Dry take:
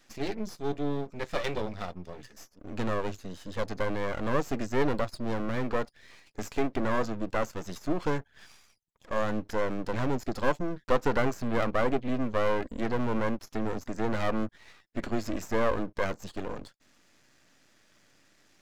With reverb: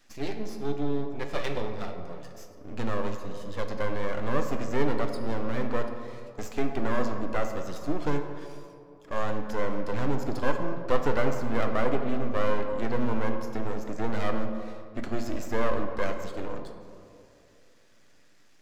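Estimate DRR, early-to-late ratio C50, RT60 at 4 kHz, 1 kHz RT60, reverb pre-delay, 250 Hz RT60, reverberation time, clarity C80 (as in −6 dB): 4.5 dB, 6.5 dB, 1.2 s, 2.4 s, 7 ms, 2.6 s, 2.6 s, 7.5 dB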